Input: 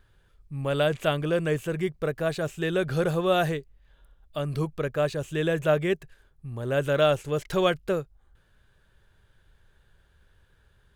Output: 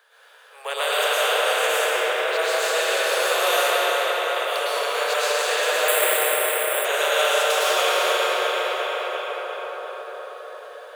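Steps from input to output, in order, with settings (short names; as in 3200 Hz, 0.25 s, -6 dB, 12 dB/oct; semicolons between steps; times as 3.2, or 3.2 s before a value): regenerating reverse delay 0.174 s, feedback 68%, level -7 dB; 1.82–2.39 bell 10000 Hz -11 dB 2 oct; reverb RT60 4.4 s, pre-delay 0.101 s, DRR -12 dB; 5.88–6.85 careless resampling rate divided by 4×, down filtered, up hold; steep high-pass 440 Hz 96 dB/oct; spectral compressor 2:1; gain -5.5 dB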